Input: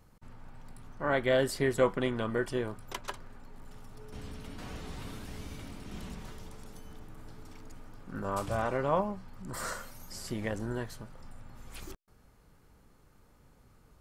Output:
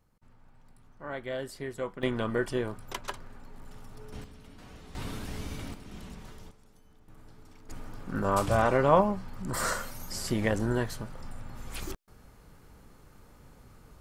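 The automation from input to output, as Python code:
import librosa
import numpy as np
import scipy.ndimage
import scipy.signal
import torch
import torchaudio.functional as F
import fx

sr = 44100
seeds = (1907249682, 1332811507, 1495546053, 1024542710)

y = fx.gain(x, sr, db=fx.steps((0.0, -9.0), (2.03, 2.0), (4.24, -7.0), (4.95, 5.0), (5.74, -2.0), (6.51, -12.0), (7.08, -4.5), (7.69, 7.0)))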